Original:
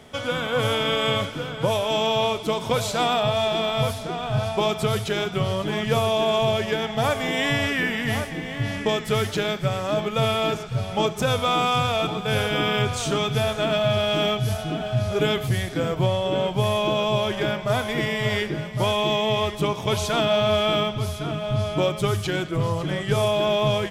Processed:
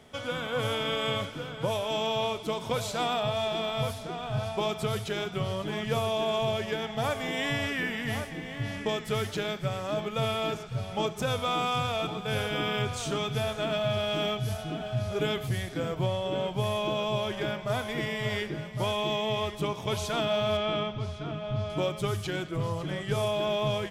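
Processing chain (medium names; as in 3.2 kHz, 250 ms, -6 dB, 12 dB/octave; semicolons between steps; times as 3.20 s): 20.57–21.70 s: distance through air 110 m; trim -7 dB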